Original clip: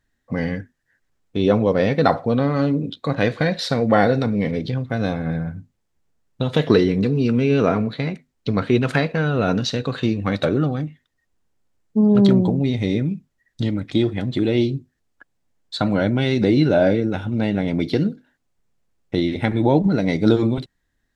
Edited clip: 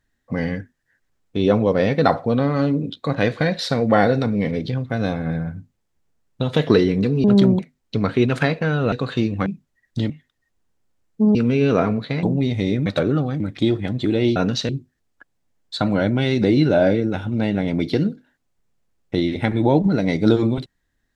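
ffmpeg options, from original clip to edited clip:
-filter_complex "[0:a]asplit=12[s0][s1][s2][s3][s4][s5][s6][s7][s8][s9][s10][s11];[s0]atrim=end=7.242[s12];[s1]atrim=start=12.108:end=12.462[s13];[s2]atrim=start=8.118:end=9.452[s14];[s3]atrim=start=9.778:end=10.322[s15];[s4]atrim=start=13.088:end=13.732[s16];[s5]atrim=start=10.858:end=12.112[s17];[s6]atrim=start=7.238:end=8.122[s18];[s7]atrim=start=12.458:end=13.092[s19];[s8]atrim=start=10.318:end=10.862[s20];[s9]atrim=start=13.728:end=14.692[s21];[s10]atrim=start=9.448:end=9.782[s22];[s11]atrim=start=14.688[s23];[s12][s13]acrossfade=d=0.004:c1=hsin:c2=hsin[s24];[s24][s14]acrossfade=d=0.004:c1=hsin:c2=hsin[s25];[s25][s15]acrossfade=d=0.004:c1=hsin:c2=hsin[s26];[s26][s16]acrossfade=d=0.004:c1=hsin:c2=hsin[s27];[s27][s17]acrossfade=d=0.004:c1=hsin:c2=hsin[s28];[s28][s18]acrossfade=d=0.004:c1=hsin:c2=hsin[s29];[s29][s19]acrossfade=d=0.004:c1=hsin:c2=hsin[s30];[s30][s20]acrossfade=d=0.004:c1=hsin:c2=hsin[s31];[s31][s21]acrossfade=d=0.004:c1=hsin:c2=hsin[s32];[s32][s22]acrossfade=d=0.004:c1=hsin:c2=hsin[s33];[s33][s23]acrossfade=d=0.004:c1=hsin:c2=hsin"

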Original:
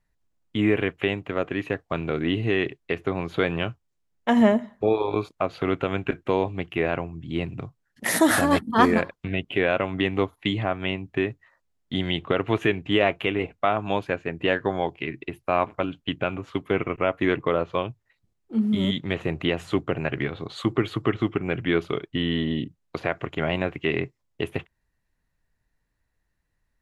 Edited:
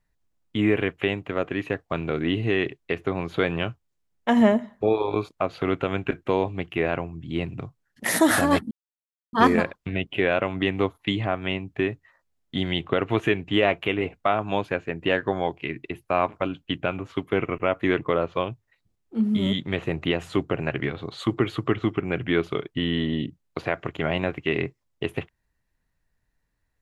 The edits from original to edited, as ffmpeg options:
-filter_complex "[0:a]asplit=2[s0][s1];[s0]atrim=end=8.71,asetpts=PTS-STARTPTS,afade=t=out:st=8.706:d=0.004:c=hsin,apad=pad_dur=0.62[s2];[s1]atrim=start=8.71,asetpts=PTS-STARTPTS,afade=t=in:d=0.004:c=hsin[s3];[s2][s3]concat=n=2:v=0:a=1"

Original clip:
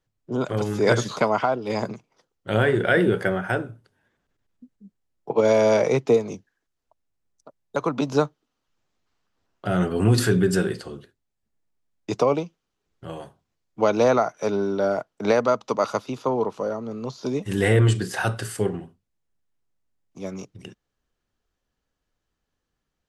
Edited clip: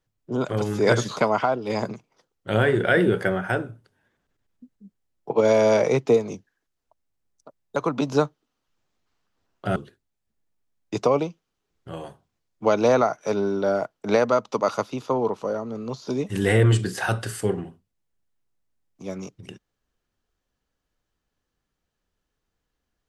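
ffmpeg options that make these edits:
-filter_complex "[0:a]asplit=2[s0][s1];[s0]atrim=end=9.762[s2];[s1]atrim=start=10.918[s3];[s2][s3]acrossfade=d=0.004:c1=hsin:c2=hsin"

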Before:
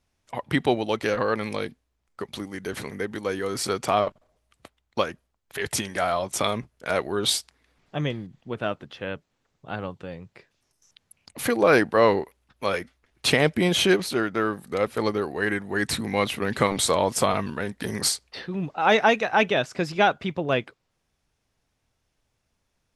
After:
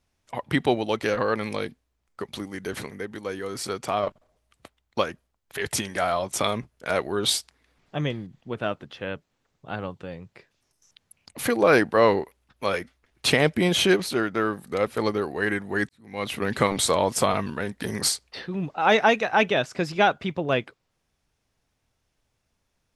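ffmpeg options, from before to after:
-filter_complex "[0:a]asplit=4[s0][s1][s2][s3];[s0]atrim=end=2.862[s4];[s1]atrim=start=2.858:end=4.032,asetpts=PTS-STARTPTS,volume=0.631[s5];[s2]atrim=start=4.028:end=15.89,asetpts=PTS-STARTPTS,afade=t=out:st=11.858:d=0.004:c=hsin[s6];[s3]atrim=start=15.89,asetpts=PTS-STARTPTS,afade=t=in:d=0.47:c=qua[s7];[s4][s5]acrossfade=d=0.004:c1=hsin:c2=hsin[s8];[s6][s7]concat=n=2:v=0:a=1[s9];[s8][s9]acrossfade=d=0.004:c1=hsin:c2=hsin"

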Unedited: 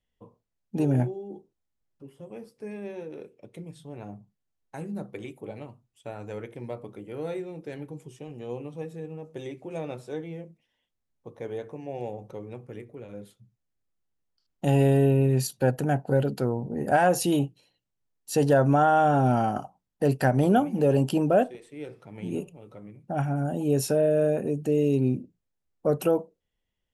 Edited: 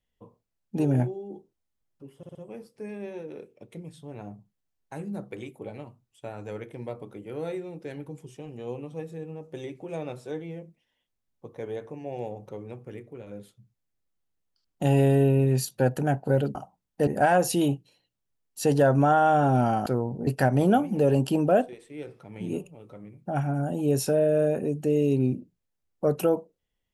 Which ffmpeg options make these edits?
-filter_complex "[0:a]asplit=8[s0][s1][s2][s3][s4][s5][s6][s7];[s0]atrim=end=2.232[s8];[s1]atrim=start=2.168:end=2.232[s9];[s2]atrim=start=2.168:end=2.232[s10];[s3]atrim=start=2.168:end=16.372[s11];[s4]atrim=start=19.568:end=20.092[s12];[s5]atrim=start=16.778:end=19.572[s13];[s6]atrim=start=16.368:end=16.782[s14];[s7]atrim=start=20.088[s15];[s8][s9]acrossfade=d=0.004:c1=hsin:c2=hsin[s16];[s16][s10]acrossfade=d=0.004:c1=hsin:c2=hsin[s17];[s17][s11]acrossfade=d=0.004:c1=hsin:c2=hsin[s18];[s18][s12]acrossfade=d=0.004:c1=hsin:c2=hsin[s19];[s19][s13]acrossfade=d=0.004:c1=hsin:c2=hsin[s20];[s20][s14]acrossfade=d=0.004:c1=hsin:c2=hsin[s21];[s21][s15]acrossfade=d=0.004:c1=hsin:c2=hsin"

